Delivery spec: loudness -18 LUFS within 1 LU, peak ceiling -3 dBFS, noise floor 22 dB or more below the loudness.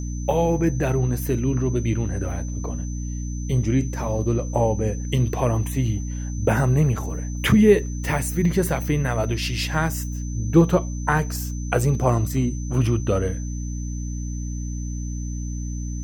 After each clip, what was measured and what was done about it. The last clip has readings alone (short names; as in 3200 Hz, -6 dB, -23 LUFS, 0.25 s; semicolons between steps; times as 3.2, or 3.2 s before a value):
hum 60 Hz; harmonics up to 300 Hz; hum level -26 dBFS; steady tone 6100 Hz; tone level -41 dBFS; loudness -23.5 LUFS; peak -3.0 dBFS; loudness target -18.0 LUFS
-> de-hum 60 Hz, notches 5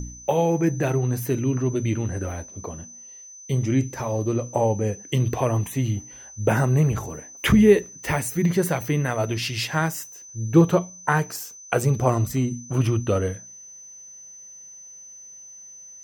hum none; steady tone 6100 Hz; tone level -41 dBFS
-> notch 6100 Hz, Q 30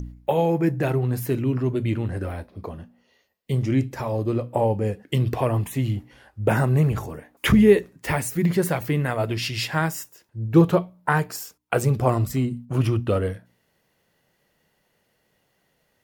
steady tone none; loudness -23.0 LUFS; peak -4.0 dBFS; loudness target -18.0 LUFS
-> gain +5 dB; limiter -3 dBFS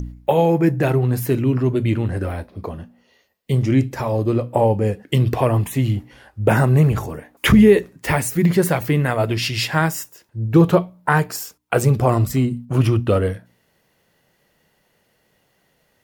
loudness -18.5 LUFS; peak -3.0 dBFS; noise floor -64 dBFS